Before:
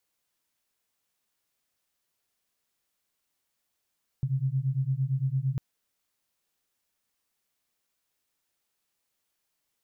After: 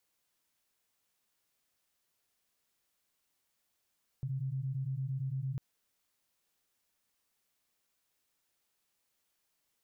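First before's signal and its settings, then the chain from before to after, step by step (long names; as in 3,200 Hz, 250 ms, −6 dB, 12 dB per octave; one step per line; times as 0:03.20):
two tones that beat 129 Hz, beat 8.8 Hz, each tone −28 dBFS 1.35 s
brickwall limiter −32 dBFS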